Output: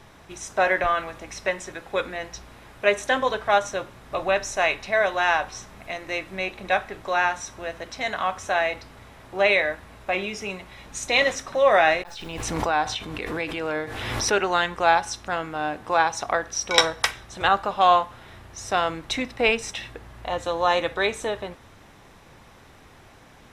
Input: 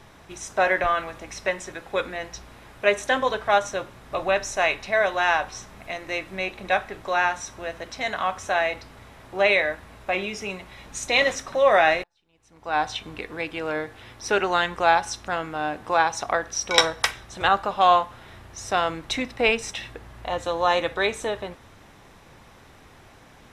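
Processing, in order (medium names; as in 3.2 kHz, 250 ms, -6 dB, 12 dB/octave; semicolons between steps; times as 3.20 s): 11.90–14.32 s: swell ahead of each attack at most 30 dB/s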